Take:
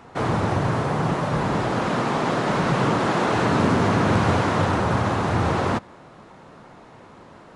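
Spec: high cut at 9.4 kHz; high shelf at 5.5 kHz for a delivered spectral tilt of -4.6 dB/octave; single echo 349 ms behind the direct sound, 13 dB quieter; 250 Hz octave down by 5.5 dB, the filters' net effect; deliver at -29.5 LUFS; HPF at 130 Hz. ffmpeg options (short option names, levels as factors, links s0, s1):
-af "highpass=130,lowpass=9400,equalizer=f=250:t=o:g=-7,highshelf=f=5500:g=-6.5,aecho=1:1:349:0.224,volume=0.531"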